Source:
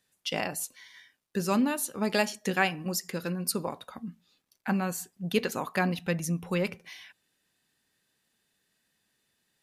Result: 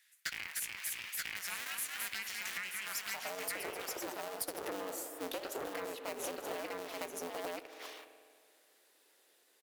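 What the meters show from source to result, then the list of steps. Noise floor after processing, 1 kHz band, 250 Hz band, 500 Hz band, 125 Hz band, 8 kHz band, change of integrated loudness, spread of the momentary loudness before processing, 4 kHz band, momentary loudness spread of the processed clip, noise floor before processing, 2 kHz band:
-69 dBFS, -9.5 dB, -19.0 dB, -9.0 dB, -28.0 dB, -4.0 dB, -9.5 dB, 13 LU, -5.0 dB, 4 LU, -76 dBFS, -6.5 dB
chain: cycle switcher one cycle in 2, inverted; spring tank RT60 2 s, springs 48 ms, chirp 30 ms, DRR 15 dB; high-pass sweep 1.9 kHz -> 410 Hz, 2.76–3.55 s; Chebyshev shaper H 7 -27 dB, 8 -28 dB, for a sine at -7.5 dBFS; delay 930 ms -6.5 dB; peak limiter -19.5 dBFS, peak gain reduction 11.5 dB; ever faster or slower copies 317 ms, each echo +1 st, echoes 3, each echo -6 dB; compression 10:1, threshold -43 dBFS, peak gain reduction 17.5 dB; high-pass 75 Hz 6 dB/octave; treble shelf 11 kHz +8 dB; trim +5.5 dB

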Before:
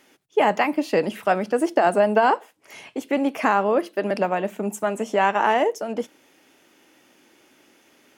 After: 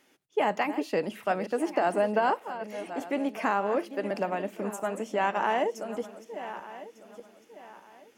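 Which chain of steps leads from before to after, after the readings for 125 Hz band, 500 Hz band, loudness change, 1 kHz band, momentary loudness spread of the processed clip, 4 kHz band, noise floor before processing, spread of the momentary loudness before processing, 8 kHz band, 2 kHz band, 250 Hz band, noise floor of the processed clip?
no reading, -7.0 dB, -8.0 dB, -7.0 dB, 14 LU, -7.0 dB, -58 dBFS, 10 LU, -7.0 dB, -7.0 dB, -7.0 dB, -62 dBFS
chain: backward echo that repeats 600 ms, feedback 54%, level -12 dB; trim -7.5 dB

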